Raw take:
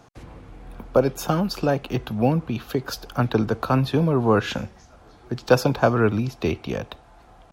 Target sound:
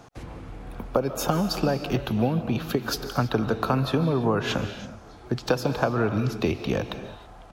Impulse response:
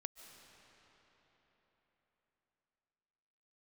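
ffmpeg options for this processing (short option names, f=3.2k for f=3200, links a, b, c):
-filter_complex "[0:a]acompressor=threshold=-22dB:ratio=10[a];[1:a]atrim=start_sample=2205,afade=t=out:st=0.39:d=0.01,atrim=end_sample=17640[b];[a][b]afir=irnorm=-1:irlink=0,volume=7.5dB"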